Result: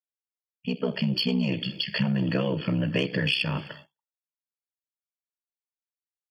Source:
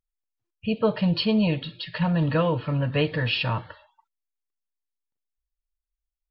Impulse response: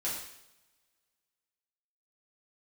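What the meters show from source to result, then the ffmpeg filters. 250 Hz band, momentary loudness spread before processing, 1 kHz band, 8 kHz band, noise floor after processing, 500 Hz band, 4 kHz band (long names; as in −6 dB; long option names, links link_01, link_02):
−2.0 dB, 8 LU, −8.5 dB, can't be measured, below −85 dBFS, −5.0 dB, +1.5 dB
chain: -filter_complex "[0:a]equalizer=frequency=1000:width_type=o:width=1.5:gain=-12,asoftclip=type=tanh:threshold=-16dB,aeval=exprs='val(0)*sin(2*PI*32*n/s)':channel_layout=same,dynaudnorm=framelen=290:gausssize=7:maxgain=13.5dB,highpass=frequency=140:width=0.5412,highpass=frequency=140:width=1.3066,highshelf=frequency=2800:gain=6.5,asplit=2[link_01][link_02];[link_02]adelay=256.6,volume=-28dB,highshelf=frequency=4000:gain=-5.77[link_03];[link_01][link_03]amix=inputs=2:normalize=0,agate=range=-33dB:threshold=-39dB:ratio=3:detection=peak,acompressor=threshold=-20dB:ratio=6,asuperstop=centerf=3900:order=20:qfactor=4.6,volume=-2dB"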